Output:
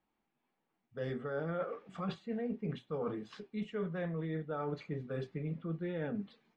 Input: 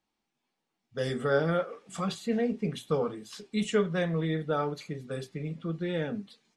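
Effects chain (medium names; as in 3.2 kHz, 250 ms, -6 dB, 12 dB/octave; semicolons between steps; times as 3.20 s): low-pass 2.2 kHz 12 dB/octave; reverse; compression 10:1, threshold -35 dBFS, peak gain reduction 15 dB; reverse; trim +1 dB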